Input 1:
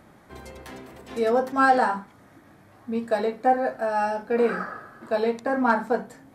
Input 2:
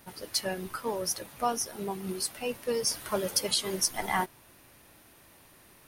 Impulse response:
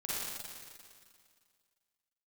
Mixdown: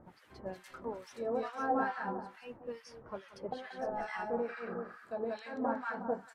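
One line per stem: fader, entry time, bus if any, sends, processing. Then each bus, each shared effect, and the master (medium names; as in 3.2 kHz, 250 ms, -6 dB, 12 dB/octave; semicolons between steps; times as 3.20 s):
-5.0 dB, 0.00 s, muted 2.82–3.52 s, no send, echo send -5 dB, low-pass that closes with the level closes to 2.5 kHz, closed at -16 dBFS; auto duck -7 dB, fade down 0.65 s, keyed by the second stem
-6.5 dB, 0.00 s, no send, echo send -12.5 dB, low-pass 2 kHz 12 dB/octave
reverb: none
echo: feedback delay 182 ms, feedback 29%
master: harmonic tremolo 2.3 Hz, depth 100%, crossover 1.2 kHz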